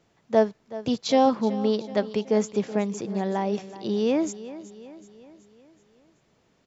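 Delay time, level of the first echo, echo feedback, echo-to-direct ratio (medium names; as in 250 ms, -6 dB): 376 ms, -15.5 dB, 52%, -14.0 dB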